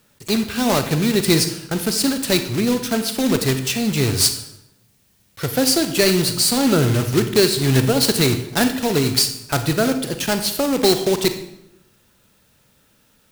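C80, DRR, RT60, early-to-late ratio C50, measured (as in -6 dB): 12.5 dB, 8.0 dB, 0.85 s, 9.5 dB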